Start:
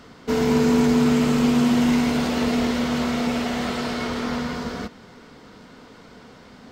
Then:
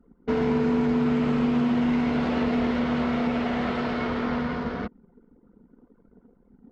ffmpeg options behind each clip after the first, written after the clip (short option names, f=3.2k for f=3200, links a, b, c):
-af "anlmdn=1.58,lowpass=2.5k,acompressor=threshold=-21dB:ratio=3"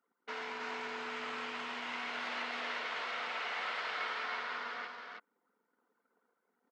-filter_complex "[0:a]highpass=1.3k,asplit=2[a][b];[b]aecho=0:1:321:0.668[c];[a][c]amix=inputs=2:normalize=0,volume=-3dB"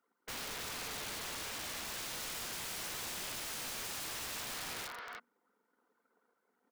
-af "bandreject=f=60:t=h:w=6,bandreject=f=120:t=h:w=6,bandreject=f=180:t=h:w=6,bandreject=f=240:t=h:w=6,aeval=exprs='(mod(84.1*val(0)+1,2)-1)/84.1':c=same,volume=1.5dB"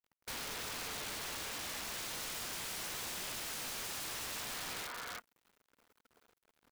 -af "acompressor=threshold=-47dB:ratio=5,acrusher=bits=11:mix=0:aa=0.000001,aeval=exprs='(mod(150*val(0)+1,2)-1)/150':c=same,volume=6.5dB"